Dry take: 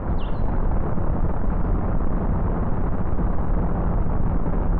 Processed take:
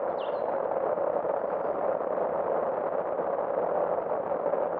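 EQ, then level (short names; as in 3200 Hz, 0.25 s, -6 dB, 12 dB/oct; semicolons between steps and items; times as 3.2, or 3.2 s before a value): resonant high-pass 550 Hz, resonance Q 4.4; -2.5 dB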